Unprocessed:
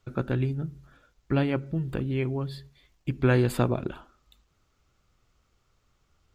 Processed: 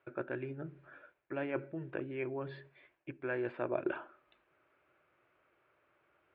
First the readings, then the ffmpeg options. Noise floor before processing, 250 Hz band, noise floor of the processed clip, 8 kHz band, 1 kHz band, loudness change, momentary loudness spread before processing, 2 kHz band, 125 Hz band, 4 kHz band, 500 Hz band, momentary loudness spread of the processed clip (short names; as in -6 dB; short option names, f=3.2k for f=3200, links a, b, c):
-71 dBFS, -13.0 dB, -77 dBFS, under -30 dB, -9.0 dB, -11.5 dB, 15 LU, -6.5 dB, -21.0 dB, under -15 dB, -7.5 dB, 17 LU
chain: -af "areverse,acompressor=threshold=-32dB:ratio=20,areverse,highpass=210,equalizer=f=210:t=q:w=4:g=-10,equalizer=f=350:t=q:w=4:g=8,equalizer=f=600:t=q:w=4:g=10,equalizer=f=960:t=q:w=4:g=4,equalizer=f=1.6k:t=q:w=4:g=10,equalizer=f=2.4k:t=q:w=4:g=7,lowpass=f=2.7k:w=0.5412,lowpass=f=2.7k:w=1.3066,volume=-2.5dB"